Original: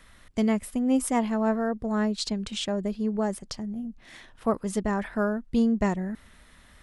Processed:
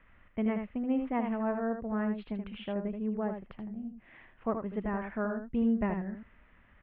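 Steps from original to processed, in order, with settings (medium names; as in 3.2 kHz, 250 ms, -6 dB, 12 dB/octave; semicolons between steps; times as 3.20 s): steep low-pass 2.8 kHz 48 dB/octave; on a send: delay 79 ms -6.5 dB; on the sum: trim -7 dB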